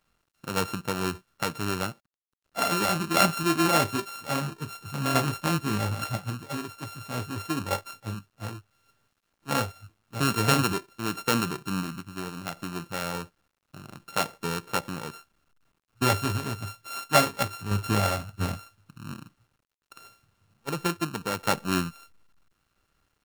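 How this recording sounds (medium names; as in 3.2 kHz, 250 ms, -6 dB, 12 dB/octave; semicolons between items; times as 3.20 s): a buzz of ramps at a fixed pitch in blocks of 32 samples; random-step tremolo; a quantiser's noise floor 12-bit, dither none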